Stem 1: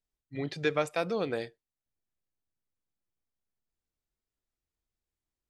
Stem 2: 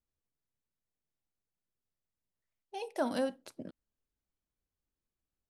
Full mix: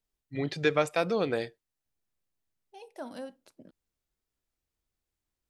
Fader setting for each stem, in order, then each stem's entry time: +3.0, -8.5 dB; 0.00, 0.00 s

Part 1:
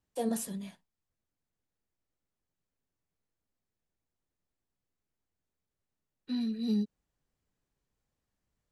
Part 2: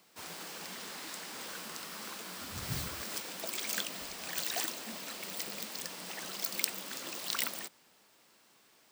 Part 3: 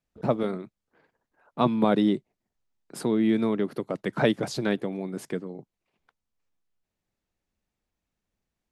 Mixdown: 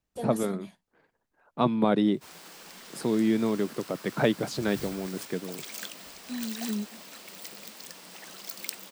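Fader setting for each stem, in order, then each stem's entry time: -2.5, -3.5, -1.5 dB; 0.00, 2.05, 0.00 s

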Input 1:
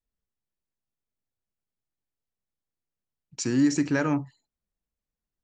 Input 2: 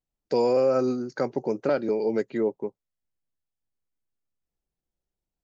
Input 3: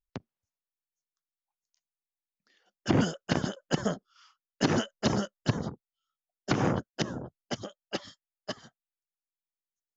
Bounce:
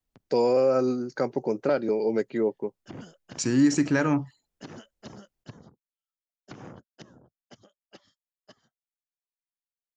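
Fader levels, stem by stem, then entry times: +1.5, 0.0, -17.5 dB; 0.00, 0.00, 0.00 s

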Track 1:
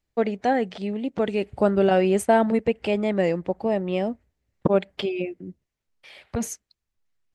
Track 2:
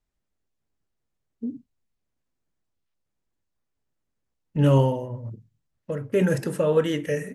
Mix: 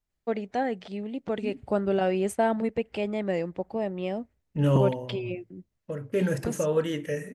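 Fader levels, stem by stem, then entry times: -6.0, -4.5 dB; 0.10, 0.00 s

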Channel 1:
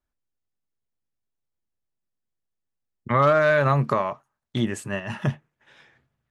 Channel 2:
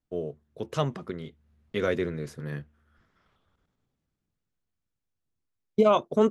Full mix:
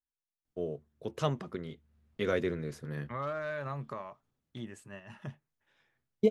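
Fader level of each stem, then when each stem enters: -18.0, -3.5 dB; 0.00, 0.45 s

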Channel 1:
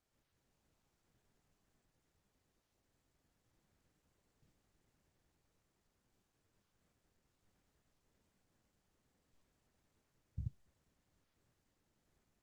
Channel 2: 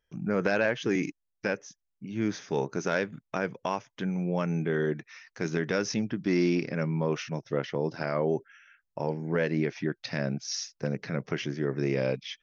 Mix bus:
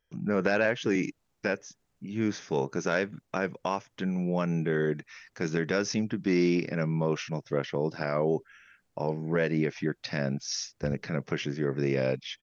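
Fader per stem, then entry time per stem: +1.5, +0.5 dB; 0.45, 0.00 s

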